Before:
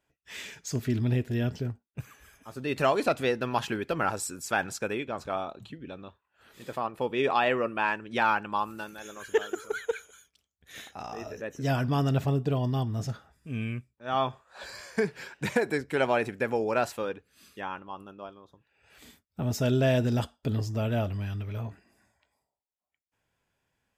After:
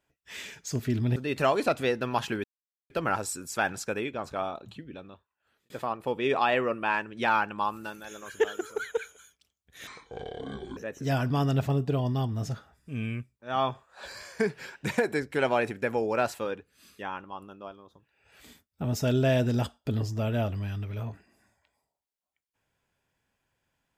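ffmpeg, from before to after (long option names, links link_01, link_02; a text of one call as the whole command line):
ffmpeg -i in.wav -filter_complex "[0:a]asplit=6[link_01][link_02][link_03][link_04][link_05][link_06];[link_01]atrim=end=1.162[link_07];[link_02]atrim=start=2.558:end=3.84,asetpts=PTS-STARTPTS,afade=type=out:start_time=1.278:duration=0.004:curve=hsin,apad=pad_dur=0.46[link_08];[link_03]atrim=start=3.84:end=6.64,asetpts=PTS-STARTPTS,afade=type=in:duration=0.004:curve=hsin,afade=type=out:start_time=1.9:duration=0.9[link_09];[link_04]atrim=start=6.64:end=10.814,asetpts=PTS-STARTPTS,afade=type=in:duration=0.004:curve=hsin[link_10];[link_05]atrim=start=10.81:end=11.35,asetpts=PTS-STARTPTS,asetrate=26460,aresample=44100[link_11];[link_06]atrim=start=11.346[link_12];[link_08][link_09][link_10]concat=n=3:v=0:a=1[link_13];[link_07][link_13]acrossfade=duration=0.004:curve1=hsin:curve2=hsin[link_14];[link_14][link_11]acrossfade=duration=0.004:curve1=hsin:curve2=hsin[link_15];[link_15][link_12]acrossfade=duration=0.004:curve1=hsin:curve2=hsin" out.wav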